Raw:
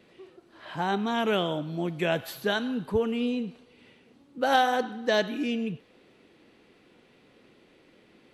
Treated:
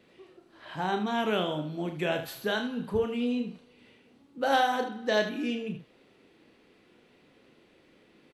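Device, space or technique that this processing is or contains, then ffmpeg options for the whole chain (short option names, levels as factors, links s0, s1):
slapback doubling: -filter_complex "[0:a]asplit=3[s0][s1][s2];[s1]adelay=33,volume=0.422[s3];[s2]adelay=77,volume=0.299[s4];[s0][s3][s4]amix=inputs=3:normalize=0,volume=0.708"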